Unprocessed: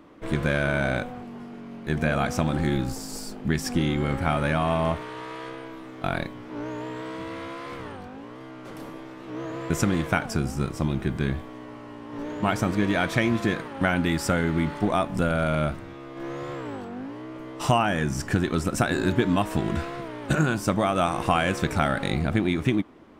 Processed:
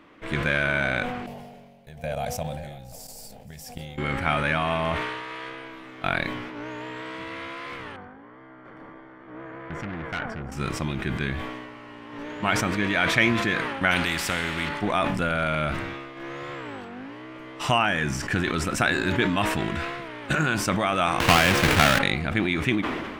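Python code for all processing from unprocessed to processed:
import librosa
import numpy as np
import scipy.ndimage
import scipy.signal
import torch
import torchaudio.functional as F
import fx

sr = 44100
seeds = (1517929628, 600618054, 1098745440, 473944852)

y = fx.chain(x, sr, fx.curve_eq(hz=(120.0, 190.0, 330.0, 530.0, 760.0, 1200.0, 1800.0, 2900.0, 8900.0, 13000.0), db=(0, -5, -18, 3, 1, -18, -14, -9, 1, 9)),
    fx.level_steps(step_db=13),
    fx.echo_single(ms=534, db=-18.0), at=(1.26, 3.98))
y = fx.chain(y, sr, fx.savgol(points=41),
    fx.tube_stage(drive_db=26.0, bias=0.65), at=(7.96, 10.52))
y = fx.chain(y, sr, fx.low_shelf(hz=460.0, db=10.0),
    fx.comb_fb(f0_hz=180.0, decay_s=1.6, harmonics='all', damping=0.0, mix_pct=60),
    fx.spectral_comp(ratio=2.0), at=(13.91, 14.69))
y = fx.chain(y, sr, fx.halfwave_hold(),
    fx.band_squash(depth_pct=40), at=(21.2, 21.99))
y = fx.peak_eq(y, sr, hz=2300.0, db=10.5, octaves=2.0)
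y = fx.sustainer(y, sr, db_per_s=35.0)
y = F.gain(torch.from_numpy(y), -4.5).numpy()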